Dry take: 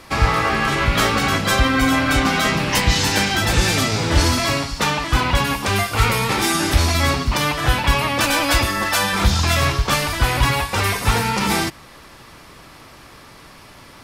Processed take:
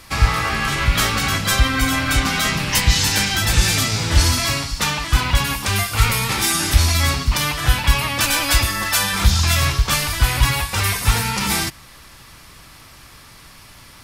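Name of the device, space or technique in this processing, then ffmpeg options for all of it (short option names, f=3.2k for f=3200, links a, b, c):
smiley-face EQ: -af "lowshelf=f=130:g=4,equalizer=f=430:t=o:w=2.5:g=-7.5,highshelf=f=6.2k:g=6.5"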